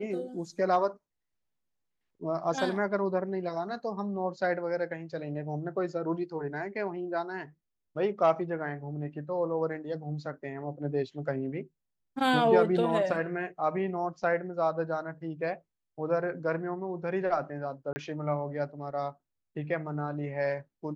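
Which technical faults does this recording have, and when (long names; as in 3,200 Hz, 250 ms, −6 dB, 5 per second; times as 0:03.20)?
0:17.93–0:17.96: drop-out 30 ms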